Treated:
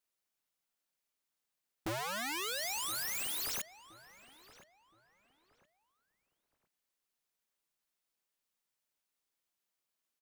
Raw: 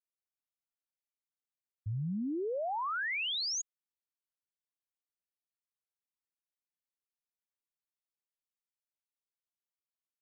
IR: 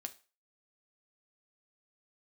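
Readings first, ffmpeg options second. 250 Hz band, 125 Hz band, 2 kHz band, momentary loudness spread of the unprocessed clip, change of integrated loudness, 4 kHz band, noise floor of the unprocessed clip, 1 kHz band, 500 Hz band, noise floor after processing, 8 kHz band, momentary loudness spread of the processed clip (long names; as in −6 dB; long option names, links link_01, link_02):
−9.5 dB, −12.5 dB, −3.5 dB, 9 LU, −2.0 dB, −2.5 dB, below −85 dBFS, −4.0 dB, −6.5 dB, below −85 dBFS, can't be measured, 6 LU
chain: -filter_complex "[0:a]equalizer=frequency=87:width_type=o:width=0.53:gain=-13,aeval=exprs='(mod(100*val(0)+1,2)-1)/100':channel_layout=same,asplit=2[link_01][link_02];[link_02]adelay=1020,lowpass=frequency=2100:poles=1,volume=-14.5dB,asplit=2[link_03][link_04];[link_04]adelay=1020,lowpass=frequency=2100:poles=1,volume=0.32,asplit=2[link_05][link_06];[link_06]adelay=1020,lowpass=frequency=2100:poles=1,volume=0.32[link_07];[link_03][link_05][link_07]amix=inputs=3:normalize=0[link_08];[link_01][link_08]amix=inputs=2:normalize=0,volume=8dB"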